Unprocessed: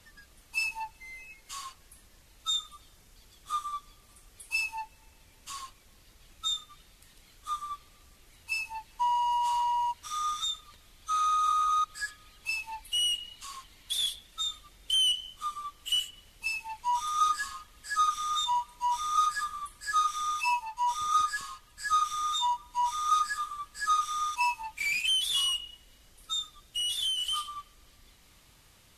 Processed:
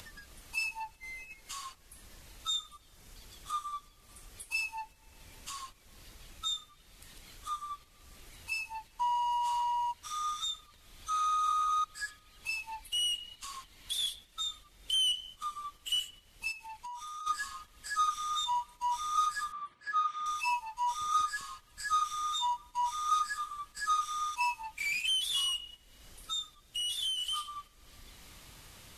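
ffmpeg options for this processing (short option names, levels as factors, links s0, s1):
-filter_complex "[0:a]asplit=3[s0][s1][s2];[s0]afade=t=out:st=16.51:d=0.02[s3];[s1]acompressor=threshold=0.00794:ratio=6:attack=3.2:release=140:knee=1:detection=peak,afade=t=in:st=16.51:d=0.02,afade=t=out:st=17.26:d=0.02[s4];[s2]afade=t=in:st=17.26:d=0.02[s5];[s3][s4][s5]amix=inputs=3:normalize=0,asettb=1/sr,asplit=3[s6][s7][s8];[s6]atrim=end=19.524[s9];[s7]atrim=start=19.52:end=20.26,asetpts=PTS-STARTPTS,afade=t=in:d=0.004:c=qsin,afade=t=out:st=0.736:d=0.004:c=qsin,highpass=140,lowpass=2700[s10];[s8]atrim=start=20.256[s11];[s9][s10]acrossfade=d=0.004:c1=hsin:c2=qsin[s12];[s12][s11]acrossfade=d=0.004:c1=qsin:c2=hsin,agate=range=0.447:threshold=0.00447:ratio=16:detection=peak,acompressor=mode=upward:threshold=0.02:ratio=2.5,volume=0.668"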